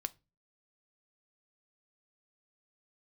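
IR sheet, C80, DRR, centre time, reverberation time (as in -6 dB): 32.5 dB, 12.0 dB, 2 ms, 0.25 s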